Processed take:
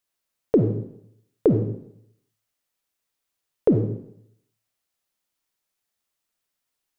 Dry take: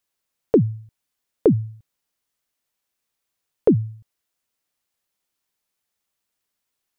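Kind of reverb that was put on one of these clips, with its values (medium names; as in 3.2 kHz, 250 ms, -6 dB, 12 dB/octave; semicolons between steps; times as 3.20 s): algorithmic reverb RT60 0.72 s, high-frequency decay 1×, pre-delay 10 ms, DRR 5 dB; trim -2.5 dB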